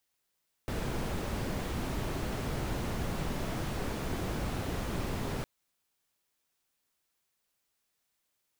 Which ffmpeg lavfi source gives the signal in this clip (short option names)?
-f lavfi -i "anoisesrc=c=brown:a=0.0989:d=4.76:r=44100:seed=1"